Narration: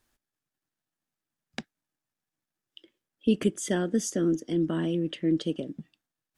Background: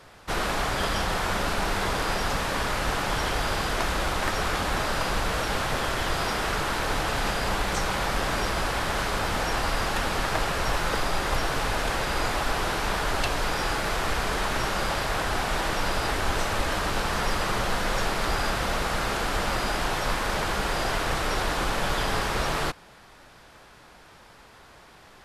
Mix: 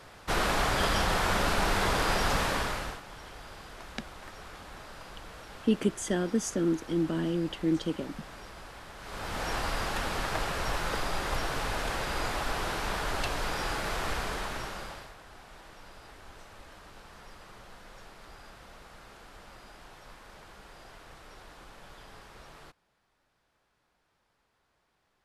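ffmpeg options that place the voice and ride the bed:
-filter_complex "[0:a]adelay=2400,volume=0.794[s0];[1:a]volume=4.73,afade=t=out:st=2.43:d=0.58:silence=0.112202,afade=t=in:st=9:d=0.51:silence=0.199526,afade=t=out:st=14.12:d=1.03:silence=0.11885[s1];[s0][s1]amix=inputs=2:normalize=0"

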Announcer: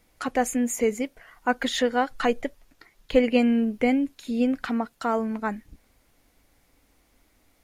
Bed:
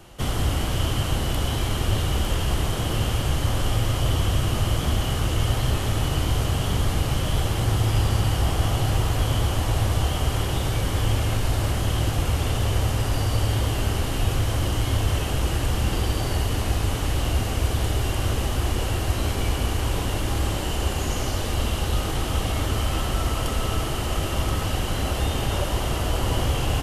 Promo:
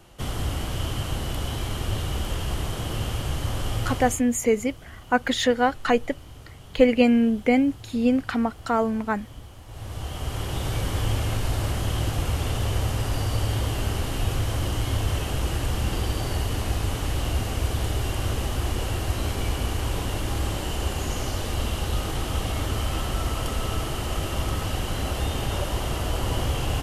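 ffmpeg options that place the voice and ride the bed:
-filter_complex "[0:a]adelay=3650,volume=1.33[s0];[1:a]volume=5.31,afade=t=out:st=3.9:d=0.33:silence=0.141254,afade=t=in:st=9.66:d=1.1:silence=0.112202[s1];[s0][s1]amix=inputs=2:normalize=0"

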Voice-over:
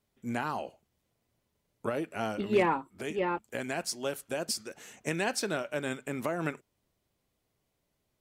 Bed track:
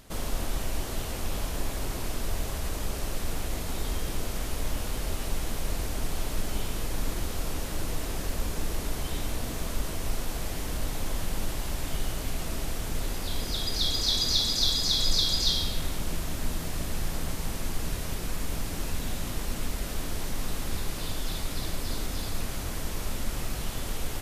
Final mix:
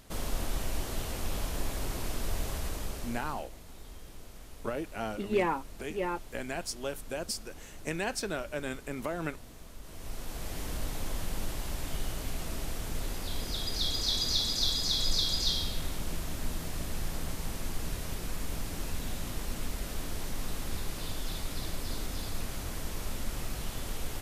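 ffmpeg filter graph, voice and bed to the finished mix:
-filter_complex "[0:a]adelay=2800,volume=0.75[s0];[1:a]volume=3.35,afade=t=out:st=2.55:d=0.95:silence=0.188365,afade=t=in:st=9.81:d=0.81:silence=0.223872[s1];[s0][s1]amix=inputs=2:normalize=0"

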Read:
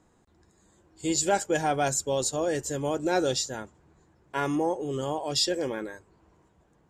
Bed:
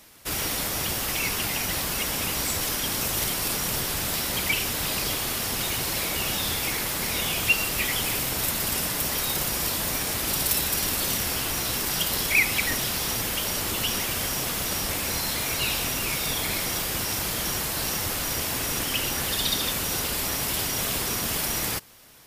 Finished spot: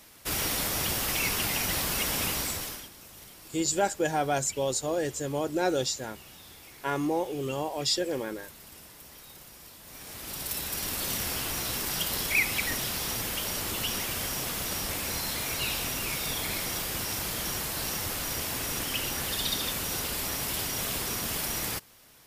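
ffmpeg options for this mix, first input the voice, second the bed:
-filter_complex "[0:a]adelay=2500,volume=0.841[s0];[1:a]volume=6.68,afade=t=out:st=2.25:d=0.65:silence=0.0891251,afade=t=in:st=9.83:d=1.4:silence=0.125893[s1];[s0][s1]amix=inputs=2:normalize=0"

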